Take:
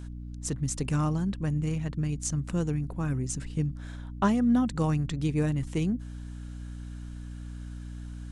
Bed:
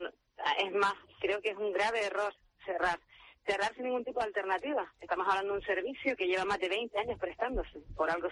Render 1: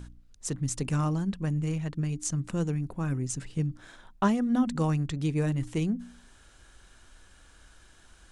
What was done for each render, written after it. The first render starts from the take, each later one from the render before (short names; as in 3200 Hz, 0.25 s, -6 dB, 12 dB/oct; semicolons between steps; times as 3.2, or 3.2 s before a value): de-hum 60 Hz, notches 5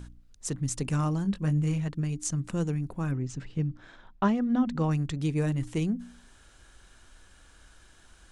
1.23–1.88 doubler 20 ms -6 dB; 3.11–4.91 air absorption 130 m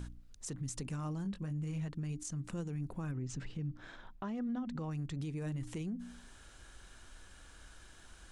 compressor 6:1, threshold -33 dBFS, peak gain reduction 13 dB; limiter -32 dBFS, peak gain reduction 11.5 dB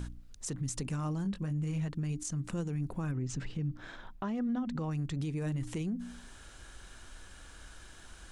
gain +4.5 dB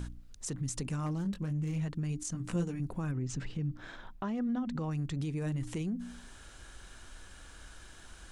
1.06–1.76 self-modulated delay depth 0.11 ms; 2.33–2.8 doubler 17 ms -3 dB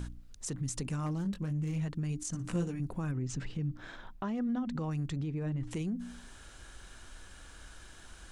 2.27–2.67 flutter echo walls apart 10.3 m, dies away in 0.26 s; 5.17–5.71 tape spacing loss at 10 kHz 21 dB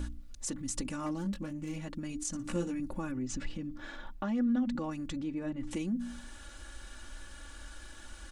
comb 3.5 ms, depth 82%